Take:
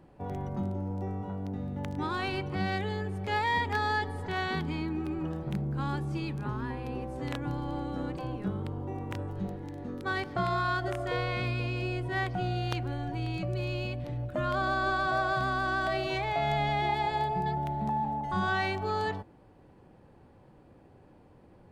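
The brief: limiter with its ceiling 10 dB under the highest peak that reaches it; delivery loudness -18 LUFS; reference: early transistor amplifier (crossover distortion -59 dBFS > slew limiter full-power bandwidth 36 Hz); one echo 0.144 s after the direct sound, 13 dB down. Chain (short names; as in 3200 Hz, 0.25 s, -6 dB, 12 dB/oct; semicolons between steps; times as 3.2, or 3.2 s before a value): limiter -24 dBFS; echo 0.144 s -13 dB; crossover distortion -59 dBFS; slew limiter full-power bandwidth 36 Hz; gain +16.5 dB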